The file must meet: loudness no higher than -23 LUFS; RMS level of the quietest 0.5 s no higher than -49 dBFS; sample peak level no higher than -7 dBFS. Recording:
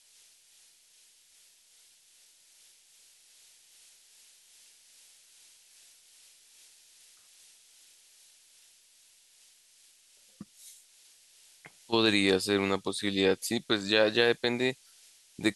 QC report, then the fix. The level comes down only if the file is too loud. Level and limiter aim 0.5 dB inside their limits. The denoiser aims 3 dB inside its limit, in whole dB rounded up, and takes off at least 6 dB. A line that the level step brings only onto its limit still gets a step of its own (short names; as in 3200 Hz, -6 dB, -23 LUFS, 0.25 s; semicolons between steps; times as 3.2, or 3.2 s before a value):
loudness -27.0 LUFS: OK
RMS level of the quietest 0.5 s -62 dBFS: OK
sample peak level -9.0 dBFS: OK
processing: none